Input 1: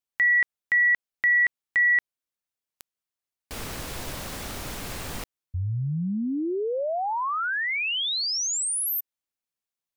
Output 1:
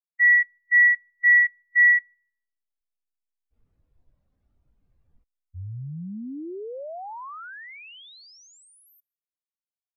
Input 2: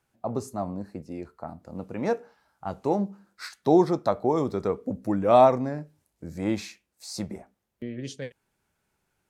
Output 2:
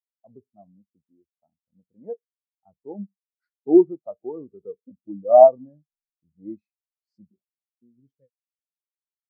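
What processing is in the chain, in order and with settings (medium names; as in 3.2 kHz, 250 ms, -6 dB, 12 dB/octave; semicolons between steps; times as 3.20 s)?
hysteresis with a dead band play -43 dBFS; feedback echo behind a high-pass 156 ms, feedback 50%, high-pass 2.1 kHz, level -13.5 dB; spectral contrast expander 2.5:1; trim +5 dB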